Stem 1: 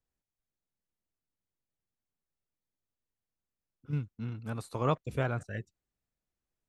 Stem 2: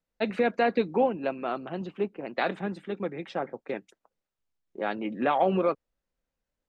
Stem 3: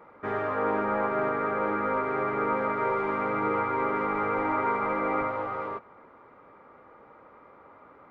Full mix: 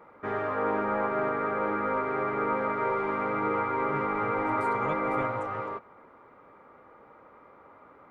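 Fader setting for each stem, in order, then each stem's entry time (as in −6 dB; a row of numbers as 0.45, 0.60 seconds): −8.0 dB, muted, −1.0 dB; 0.00 s, muted, 0.00 s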